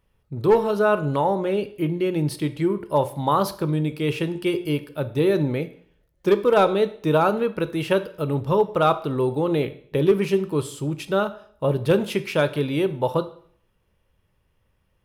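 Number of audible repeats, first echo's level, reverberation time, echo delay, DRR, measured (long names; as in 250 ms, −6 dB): no echo audible, no echo audible, 0.55 s, no echo audible, 11.0 dB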